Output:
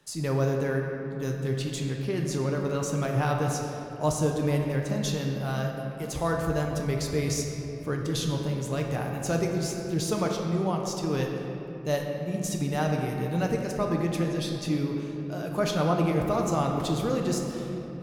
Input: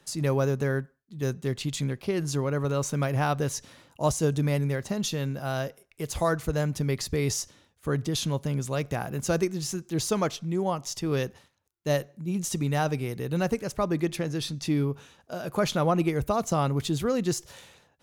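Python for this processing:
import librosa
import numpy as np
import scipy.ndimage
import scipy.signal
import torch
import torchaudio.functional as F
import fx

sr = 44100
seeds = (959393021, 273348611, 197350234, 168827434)

y = fx.room_shoebox(x, sr, seeds[0], volume_m3=190.0, walls='hard', distance_m=0.41)
y = F.gain(torch.from_numpy(y), -3.0).numpy()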